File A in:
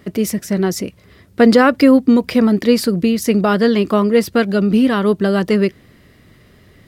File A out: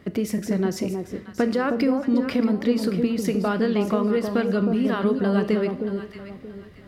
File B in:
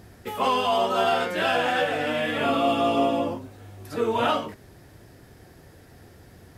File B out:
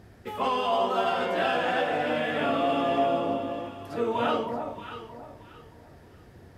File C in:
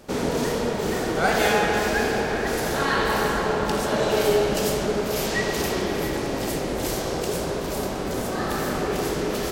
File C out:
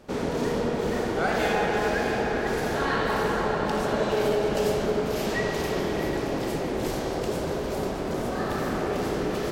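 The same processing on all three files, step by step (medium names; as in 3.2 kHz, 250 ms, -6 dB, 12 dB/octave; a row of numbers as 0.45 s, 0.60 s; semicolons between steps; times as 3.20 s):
treble shelf 5.3 kHz -9.5 dB; compression, threshold -17 dBFS; on a send: echo whose repeats swap between lows and highs 314 ms, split 970 Hz, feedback 51%, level -4.5 dB; on the sum: Schroeder reverb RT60 0.54 s, combs from 26 ms, DRR 12.5 dB; trim -3 dB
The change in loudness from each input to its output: -9.0 LU, -3.5 LU, -2.5 LU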